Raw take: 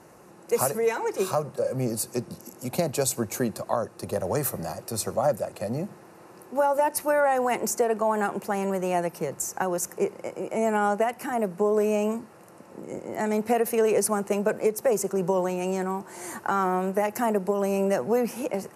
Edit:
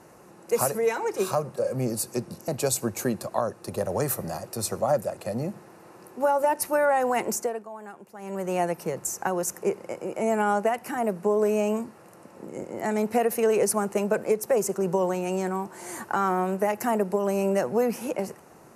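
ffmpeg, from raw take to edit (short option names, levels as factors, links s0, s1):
-filter_complex "[0:a]asplit=4[s0][s1][s2][s3];[s0]atrim=end=2.482[s4];[s1]atrim=start=2.828:end=8,asetpts=PTS-STARTPTS,afade=t=out:st=4.812:d=0.36:silence=0.158489[s5];[s2]atrim=start=8:end=8.53,asetpts=PTS-STARTPTS,volume=0.158[s6];[s3]atrim=start=8.53,asetpts=PTS-STARTPTS,afade=t=in:d=0.36:silence=0.158489[s7];[s5][s6][s7]concat=n=3:v=0:a=1[s8];[s4][s8]acrossfade=d=0.004:c1=hsin:c2=hsin"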